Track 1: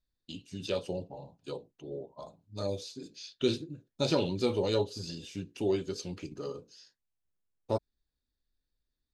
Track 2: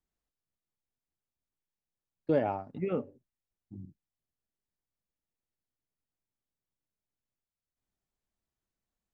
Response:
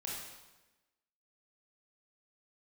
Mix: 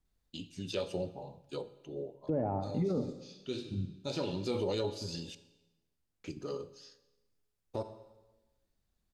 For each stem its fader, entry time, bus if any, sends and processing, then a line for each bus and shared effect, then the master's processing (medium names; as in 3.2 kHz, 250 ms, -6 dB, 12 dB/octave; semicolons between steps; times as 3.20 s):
-1.5 dB, 0.05 s, muted 5.35–6.24 s, send -12.5 dB, auto duck -13 dB, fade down 0.25 s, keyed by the second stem
+1.5 dB, 0.00 s, send -11.5 dB, low-pass that closes with the level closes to 1 kHz, closed at -29.5 dBFS; bass shelf 210 Hz +10 dB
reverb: on, RT60 1.1 s, pre-delay 22 ms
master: peak limiter -24 dBFS, peak gain reduction 11.5 dB